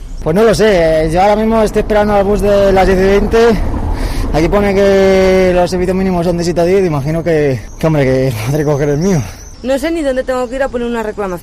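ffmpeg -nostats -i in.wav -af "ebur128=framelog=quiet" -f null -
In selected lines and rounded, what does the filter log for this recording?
Integrated loudness:
  I:         -11.8 LUFS
  Threshold: -21.9 LUFS
Loudness range:
  LRA:         4.0 LU
  Threshold: -31.8 LUFS
  LRA low:   -14.1 LUFS
  LRA high:  -10.1 LUFS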